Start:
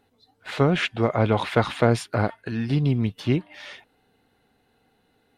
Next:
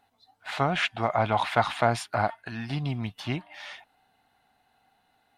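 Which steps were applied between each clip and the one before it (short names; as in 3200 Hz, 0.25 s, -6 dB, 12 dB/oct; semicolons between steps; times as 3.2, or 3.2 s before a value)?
resonant low shelf 580 Hz -6.5 dB, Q 3; gain -1.5 dB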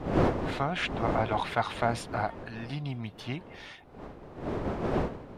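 wind noise 520 Hz -29 dBFS; gain -5 dB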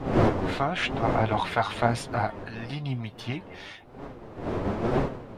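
flange 0.99 Hz, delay 7.1 ms, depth 4 ms, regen +51%; gain +7.5 dB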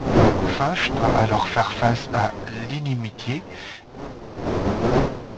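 CVSD 32 kbps; gain +6.5 dB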